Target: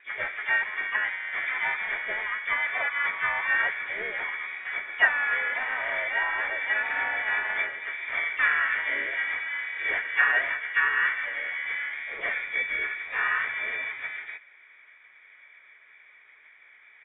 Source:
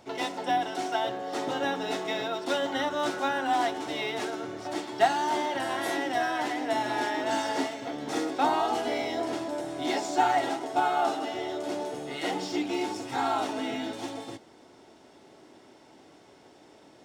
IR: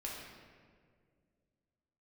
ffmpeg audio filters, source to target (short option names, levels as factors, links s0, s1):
-filter_complex "[0:a]adynamicsmooth=sensitivity=6:basefreq=1700,lowpass=f=2200:t=q:w=0.5098,lowpass=f=2200:t=q:w=0.6013,lowpass=f=2200:t=q:w=0.9,lowpass=f=2200:t=q:w=2.563,afreqshift=-2600,asplit=2[s0][s1];[1:a]atrim=start_sample=2205,afade=t=out:st=0.41:d=0.01,atrim=end_sample=18522[s2];[s1][s2]afir=irnorm=-1:irlink=0,volume=0.0891[s3];[s0][s3]amix=inputs=2:normalize=0,asplit=4[s4][s5][s6][s7];[s5]asetrate=33038,aresample=44100,atempo=1.33484,volume=0.126[s8];[s6]asetrate=37084,aresample=44100,atempo=1.18921,volume=0.447[s9];[s7]asetrate=66075,aresample=44100,atempo=0.66742,volume=0.126[s10];[s4][s8][s9][s10]amix=inputs=4:normalize=0"